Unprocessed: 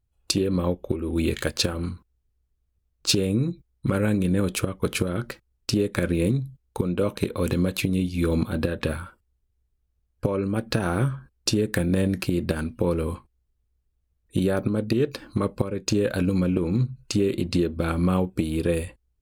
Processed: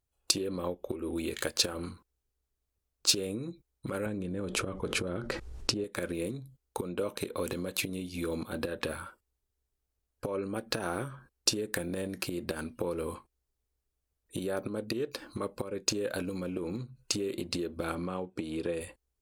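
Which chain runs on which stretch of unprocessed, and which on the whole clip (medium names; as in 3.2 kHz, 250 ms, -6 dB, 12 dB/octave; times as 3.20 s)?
4.06–5.84 s: low-pass 8.8 kHz + tilt EQ -2 dB/octave + level flattener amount 70%
17.95–18.81 s: high-pass 82 Hz + distance through air 70 m
whole clip: treble shelf 2.7 kHz -7.5 dB; compression, threshold -26 dBFS; tone controls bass -12 dB, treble +9 dB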